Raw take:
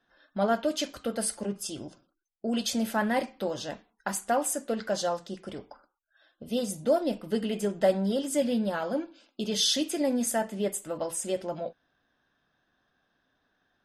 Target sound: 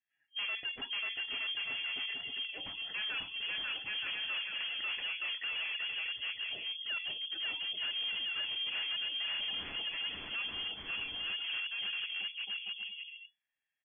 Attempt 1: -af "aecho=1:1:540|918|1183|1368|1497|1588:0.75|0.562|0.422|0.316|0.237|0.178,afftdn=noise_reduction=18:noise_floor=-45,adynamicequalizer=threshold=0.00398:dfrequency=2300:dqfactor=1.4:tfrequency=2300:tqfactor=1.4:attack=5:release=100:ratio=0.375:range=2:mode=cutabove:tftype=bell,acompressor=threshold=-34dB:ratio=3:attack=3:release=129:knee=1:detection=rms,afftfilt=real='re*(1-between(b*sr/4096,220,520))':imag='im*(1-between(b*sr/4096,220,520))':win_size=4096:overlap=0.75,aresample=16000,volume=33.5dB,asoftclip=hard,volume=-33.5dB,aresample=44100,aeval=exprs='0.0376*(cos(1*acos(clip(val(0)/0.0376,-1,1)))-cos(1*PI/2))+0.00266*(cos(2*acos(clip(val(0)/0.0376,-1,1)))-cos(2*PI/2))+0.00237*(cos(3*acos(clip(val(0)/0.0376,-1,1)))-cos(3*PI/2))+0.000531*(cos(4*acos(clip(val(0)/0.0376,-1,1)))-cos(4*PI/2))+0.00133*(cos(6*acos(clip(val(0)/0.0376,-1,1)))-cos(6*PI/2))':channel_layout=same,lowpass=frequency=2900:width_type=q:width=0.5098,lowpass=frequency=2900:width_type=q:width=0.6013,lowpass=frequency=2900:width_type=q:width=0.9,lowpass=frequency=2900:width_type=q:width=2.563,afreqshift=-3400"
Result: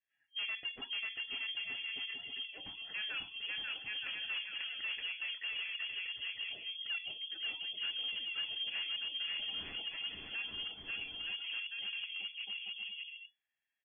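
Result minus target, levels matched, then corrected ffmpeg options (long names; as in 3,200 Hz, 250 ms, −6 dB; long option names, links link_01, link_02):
downward compressor: peak gain reduction +5.5 dB
-af "aecho=1:1:540|918|1183|1368|1497|1588:0.75|0.562|0.422|0.316|0.237|0.178,afftdn=noise_reduction=18:noise_floor=-45,adynamicequalizer=threshold=0.00398:dfrequency=2300:dqfactor=1.4:tfrequency=2300:tqfactor=1.4:attack=5:release=100:ratio=0.375:range=2:mode=cutabove:tftype=bell,acompressor=threshold=-25.5dB:ratio=3:attack=3:release=129:knee=1:detection=rms,afftfilt=real='re*(1-between(b*sr/4096,220,520))':imag='im*(1-between(b*sr/4096,220,520))':win_size=4096:overlap=0.75,aresample=16000,volume=33.5dB,asoftclip=hard,volume=-33.5dB,aresample=44100,aeval=exprs='0.0376*(cos(1*acos(clip(val(0)/0.0376,-1,1)))-cos(1*PI/2))+0.00266*(cos(2*acos(clip(val(0)/0.0376,-1,1)))-cos(2*PI/2))+0.00237*(cos(3*acos(clip(val(0)/0.0376,-1,1)))-cos(3*PI/2))+0.000531*(cos(4*acos(clip(val(0)/0.0376,-1,1)))-cos(4*PI/2))+0.00133*(cos(6*acos(clip(val(0)/0.0376,-1,1)))-cos(6*PI/2))':channel_layout=same,lowpass=frequency=2900:width_type=q:width=0.5098,lowpass=frequency=2900:width_type=q:width=0.6013,lowpass=frequency=2900:width_type=q:width=0.9,lowpass=frequency=2900:width_type=q:width=2.563,afreqshift=-3400"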